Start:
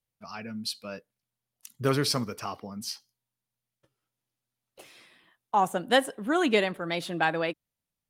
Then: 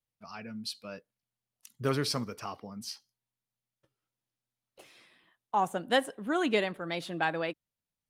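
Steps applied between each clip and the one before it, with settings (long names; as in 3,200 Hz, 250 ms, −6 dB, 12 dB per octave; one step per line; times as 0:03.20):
high-shelf EQ 10,000 Hz −5 dB
level −4 dB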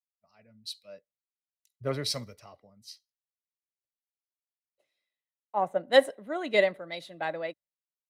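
hollow resonant body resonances 590/2,000/3,900 Hz, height 13 dB, ringing for 25 ms
multiband upward and downward expander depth 100%
level −7.5 dB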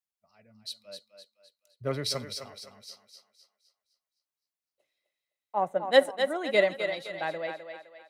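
feedback echo with a high-pass in the loop 257 ms, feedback 42%, high-pass 360 Hz, level −7 dB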